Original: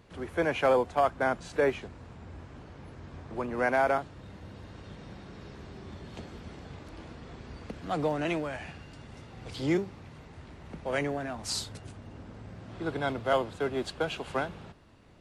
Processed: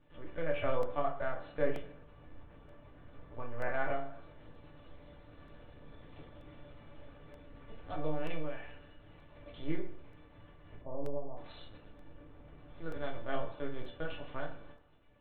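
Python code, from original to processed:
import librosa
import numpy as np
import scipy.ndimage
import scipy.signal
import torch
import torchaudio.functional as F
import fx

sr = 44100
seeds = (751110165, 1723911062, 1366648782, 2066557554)

p1 = x + fx.echo_feedback(x, sr, ms=115, feedback_pct=49, wet_db=-21.0, dry=0)
p2 = fx.lpc_vocoder(p1, sr, seeds[0], excitation='pitch_kept', order=8)
p3 = fx.steep_lowpass(p2, sr, hz=1100.0, slope=96, at=(10.81, 11.37))
p4 = fx.comb_fb(p3, sr, f0_hz=580.0, decay_s=0.39, harmonics='all', damping=0.0, mix_pct=90)
p5 = fx.rev_fdn(p4, sr, rt60_s=0.54, lf_ratio=0.9, hf_ratio=0.55, size_ms=20.0, drr_db=1.0)
p6 = fx.buffer_crackle(p5, sr, first_s=0.83, period_s=0.93, block=64, kind='repeat')
y = p6 * librosa.db_to_amplitude(6.0)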